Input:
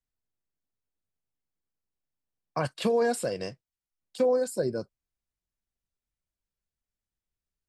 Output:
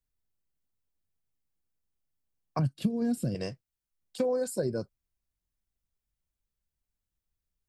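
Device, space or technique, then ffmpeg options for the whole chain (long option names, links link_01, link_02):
ASMR close-microphone chain: -filter_complex "[0:a]asettb=1/sr,asplit=3[link_01][link_02][link_03];[link_01]atrim=end=2.594[link_04];[link_02]atrim=start=2.59:end=3.35,asetpts=PTS-STARTPTS,afade=type=in:duration=0.004:curve=qsin,afade=type=out:start_time=0.756:duration=0.004:curve=qsin,equalizer=frequency=125:width_type=o:width=1:gain=9,equalizer=frequency=250:width_type=o:width=1:gain=9,equalizer=frequency=500:width_type=o:width=1:gain=-8,equalizer=frequency=1000:width_type=o:width=1:gain=-12,equalizer=frequency=2000:width_type=o:width=1:gain=-9,equalizer=frequency=4000:width_type=o:width=1:gain=-4,equalizer=frequency=8000:width_type=o:width=1:gain=-7[link_05];[link_03]atrim=start=3.346[link_06];[link_04][link_05]acrossfade=duration=0.004:curve1=hsin:curve2=qsin[link_07];[link_07][link_06]acrossfade=duration=0.004:curve1=qsin:curve2=hsin,lowshelf=frequency=180:gain=8,acompressor=threshold=-23dB:ratio=6,highshelf=frequency=11000:gain=6,volume=-1.5dB"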